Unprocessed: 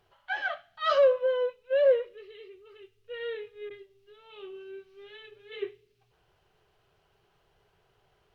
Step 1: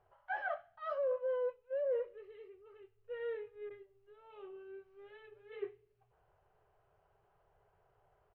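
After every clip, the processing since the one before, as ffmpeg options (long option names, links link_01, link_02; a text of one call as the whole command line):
ffmpeg -i in.wav -af "firequalizer=gain_entry='entry(100,0);entry(260,-11);entry(410,-2);entry(600,4);entry(3500,-18)':delay=0.05:min_phase=1,areverse,acompressor=threshold=-29dB:ratio=10,areverse,volume=-3.5dB" out.wav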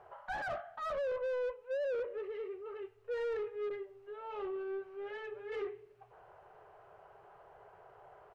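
ffmpeg -i in.wav -filter_complex "[0:a]alimiter=level_in=11dB:limit=-24dB:level=0:latency=1:release=157,volume=-11dB,asplit=2[link_01][link_02];[link_02]highpass=frequency=720:poles=1,volume=22dB,asoftclip=type=tanh:threshold=-34.5dB[link_03];[link_01][link_03]amix=inputs=2:normalize=0,lowpass=frequency=1100:poles=1,volume=-6dB,volume=4.5dB" out.wav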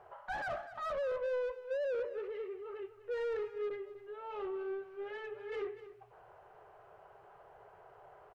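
ffmpeg -i in.wav -af "aecho=1:1:248:0.188" out.wav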